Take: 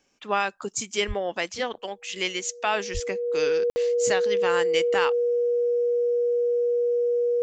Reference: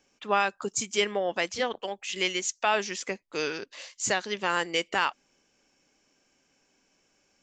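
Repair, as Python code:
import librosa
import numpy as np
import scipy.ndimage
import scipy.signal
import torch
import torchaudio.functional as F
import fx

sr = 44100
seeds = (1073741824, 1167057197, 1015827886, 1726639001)

y = fx.notch(x, sr, hz=480.0, q=30.0)
y = fx.highpass(y, sr, hz=140.0, slope=24, at=(1.07, 1.19), fade=0.02)
y = fx.highpass(y, sr, hz=140.0, slope=24, at=(2.93, 3.05), fade=0.02)
y = fx.fix_ambience(y, sr, seeds[0], print_start_s=0.0, print_end_s=0.5, start_s=3.7, end_s=3.76)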